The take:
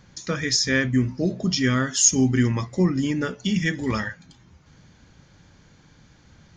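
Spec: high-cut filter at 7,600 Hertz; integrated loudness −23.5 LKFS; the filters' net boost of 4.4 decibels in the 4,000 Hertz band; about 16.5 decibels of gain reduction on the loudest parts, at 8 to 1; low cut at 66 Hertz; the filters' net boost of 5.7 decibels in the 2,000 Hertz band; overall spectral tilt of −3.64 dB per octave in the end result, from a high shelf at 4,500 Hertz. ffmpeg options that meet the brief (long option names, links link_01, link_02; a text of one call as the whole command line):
ffmpeg -i in.wav -af "highpass=66,lowpass=7600,equalizer=frequency=2000:width_type=o:gain=5.5,equalizer=frequency=4000:width_type=o:gain=8.5,highshelf=frequency=4500:gain=-3.5,acompressor=threshold=-32dB:ratio=8,volume=11.5dB" out.wav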